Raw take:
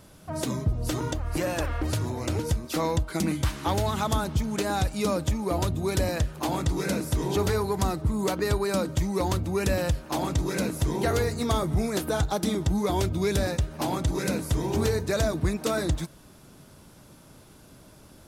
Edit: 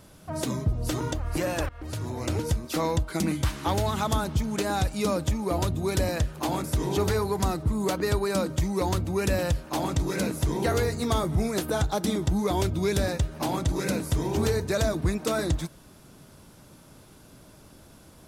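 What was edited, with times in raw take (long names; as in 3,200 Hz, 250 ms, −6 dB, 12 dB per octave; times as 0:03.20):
0:01.69–0:02.23: fade in, from −22.5 dB
0:06.64–0:07.03: remove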